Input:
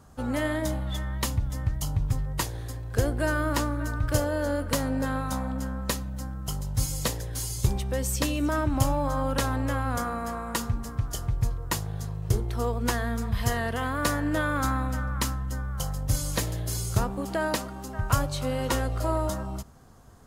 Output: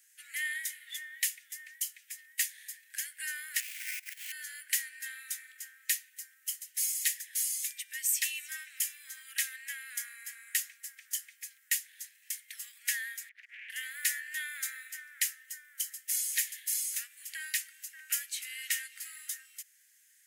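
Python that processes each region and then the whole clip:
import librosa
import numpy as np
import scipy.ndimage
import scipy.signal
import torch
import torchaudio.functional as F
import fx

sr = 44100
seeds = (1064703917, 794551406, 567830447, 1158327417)

y = fx.chain(x, sr, fx.over_compress(threshold_db=-30.0, ratio=-0.5),
    fx.highpass(hz=170.0, slope=12),
    fx.sample_hold(seeds[0], rate_hz=3700.0, jitter_pct=20), at=(3.6, 4.32))
y = fx.chain(y, sr, fx.over_compress(threshold_db=-30.0, ratio=-0.5),
    fx.bandpass_q(hz=1300.0, q=6.1),
    fx.doppler_dist(depth_ms=0.99), at=(13.29, 13.7))
y = scipy.signal.sosfilt(scipy.signal.butter(12, 1800.0, 'highpass', fs=sr, output='sos'), y)
y = fx.peak_eq(y, sr, hz=4200.0, db=-12.0, octaves=1.4)
y = y * 10.0 ** (7.0 / 20.0)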